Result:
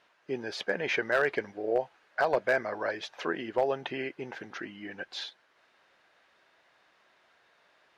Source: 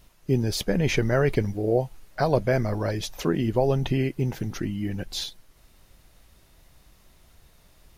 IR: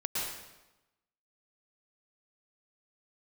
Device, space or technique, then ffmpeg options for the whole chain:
megaphone: -af "highpass=500,lowpass=2900,equalizer=frequency=210:width_type=o:width=3:gain=-2,equalizer=frequency=1600:width_type=o:width=0.27:gain=7,asoftclip=type=hard:threshold=-17dB"

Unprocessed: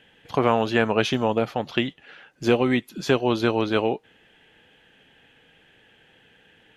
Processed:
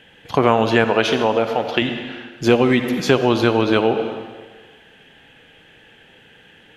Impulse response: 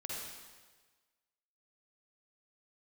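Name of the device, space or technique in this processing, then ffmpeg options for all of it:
ducked reverb: -filter_complex "[0:a]asettb=1/sr,asplit=3[link_01][link_02][link_03];[link_01]atrim=end=0.844[link_04];[link_02]atrim=start=0.84:end=1.82,asetpts=PTS-STARTPTS,afade=type=in:duration=0.004:curve=qsin,afade=type=out:start_time=0.976:duration=0.004:curve=qsin,bass=frequency=250:gain=-9,treble=frequency=4000:gain=-3[link_05];[link_03]atrim=start=1.816[link_06];[link_04][link_05]acrossfade=duration=0.004:curve1=hsin:curve2=qsin[link_07];[link_07][link_06]acrossfade=duration=0.004:curve1=qsin:curve2=hsin,asplit=3[link_08][link_09][link_10];[1:a]atrim=start_sample=2205[link_11];[link_09][link_11]afir=irnorm=-1:irlink=0[link_12];[link_10]apad=whole_len=298401[link_13];[link_12][link_13]sidechaincompress=threshold=-23dB:ratio=8:attack=16:release=220,volume=-1dB[link_14];[link_08][link_14]amix=inputs=2:normalize=0,volume=3.5dB"

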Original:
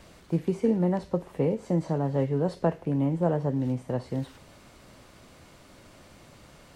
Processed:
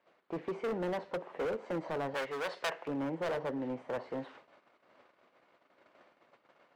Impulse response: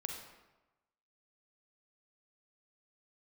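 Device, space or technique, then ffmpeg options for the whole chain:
walkie-talkie: -filter_complex "[0:a]highpass=450,lowpass=2200,asoftclip=type=hard:threshold=-33dB,agate=range=-19dB:threshold=-55dB:ratio=16:detection=peak,asettb=1/sr,asplit=3[link_01][link_02][link_03];[link_01]atrim=end=2.144[link_04];[link_02]atrim=start=2.14:end=2.88,asetpts=PTS-STARTPTS,afade=type=in:duration=0.004:curve=qsin,afade=type=out:start_time=0.736:duration=0.004:curve=qsin,tiltshelf=frequency=760:gain=-9[link_05];[link_03]atrim=start=2.876[link_06];[link_04][link_05]acrossfade=duration=0.004:curve1=hsin:curve2=qsin[link_07];[link_07][link_06]acrossfade=duration=0.004:curve1=qsin:curve2=hsin,volume=1.5dB"

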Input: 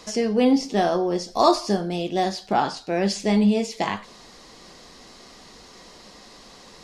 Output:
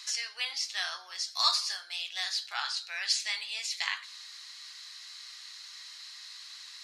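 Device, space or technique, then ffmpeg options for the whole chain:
headphones lying on a table: -af "highpass=frequency=1500:width=0.5412,highpass=frequency=1500:width=1.3066,equalizer=frequency=4100:width_type=o:width=0.23:gain=8"

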